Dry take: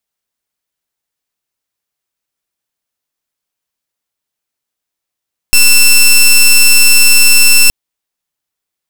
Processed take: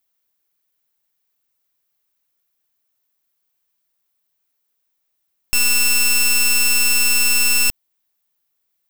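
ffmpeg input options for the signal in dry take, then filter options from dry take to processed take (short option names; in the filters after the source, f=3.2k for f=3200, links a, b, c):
-f lavfi -i "aevalsrc='0.596*(2*lt(mod(2680*t,1),0.13)-1)':d=2.17:s=44100"
-af "aexciter=amount=3.1:drive=3.5:freq=12k,asoftclip=type=tanh:threshold=-13.5dB"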